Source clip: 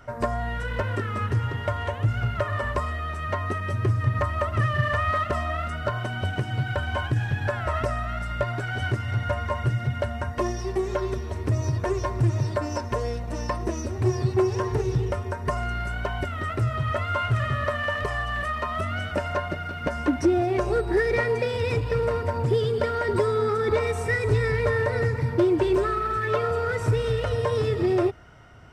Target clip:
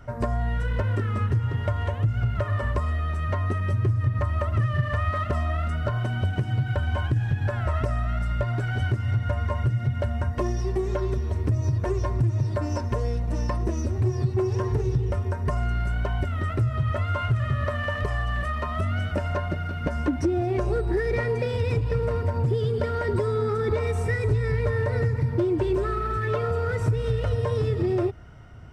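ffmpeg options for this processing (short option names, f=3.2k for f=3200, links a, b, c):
-af "lowshelf=f=270:g=10.5,acompressor=threshold=-18dB:ratio=3,volume=-3dB"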